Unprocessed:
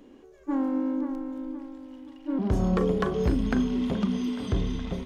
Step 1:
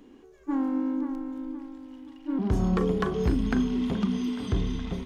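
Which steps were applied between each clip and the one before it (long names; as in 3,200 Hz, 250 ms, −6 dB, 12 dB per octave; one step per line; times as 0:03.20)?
parametric band 570 Hz −8 dB 0.34 octaves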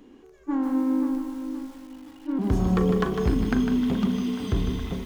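feedback echo at a low word length 153 ms, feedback 35%, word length 8 bits, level −7 dB
level +1.5 dB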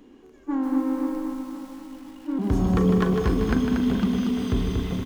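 repeating echo 235 ms, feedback 53%, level −5 dB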